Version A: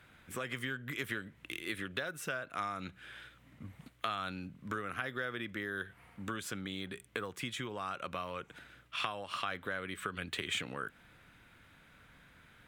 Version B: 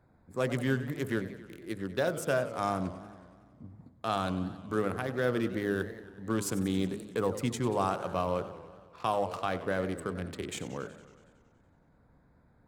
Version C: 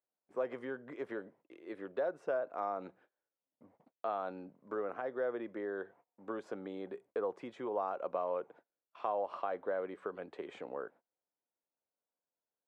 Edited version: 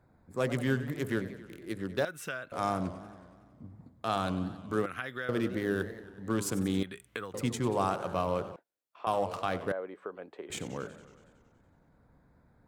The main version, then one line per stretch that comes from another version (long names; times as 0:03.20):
B
0:02.05–0:02.52: punch in from A
0:04.86–0:05.29: punch in from A
0:06.83–0:07.34: punch in from A
0:08.56–0:09.07: punch in from C
0:09.72–0:10.50: punch in from C